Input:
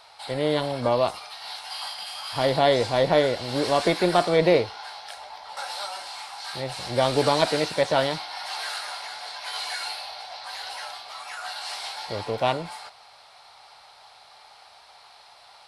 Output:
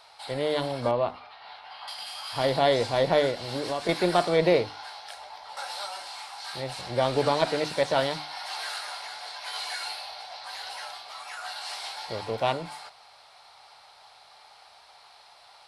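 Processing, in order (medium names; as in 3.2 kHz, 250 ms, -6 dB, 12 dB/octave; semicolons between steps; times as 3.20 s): 6.81–7.65 s: treble shelf 4.6 kHz -7.5 dB; hum notches 50/100/150/200/250/300 Hz; 0.91–1.88 s: distance through air 370 m; 3.30–3.89 s: compression 3:1, threshold -26 dBFS, peak gain reduction 7.5 dB; trim -2.5 dB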